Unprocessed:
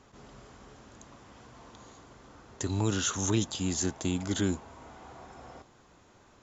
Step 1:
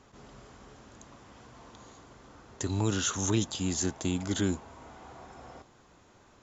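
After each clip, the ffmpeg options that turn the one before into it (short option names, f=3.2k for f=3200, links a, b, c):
-af anull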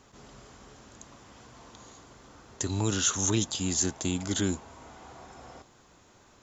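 -af "highshelf=f=4k:g=7"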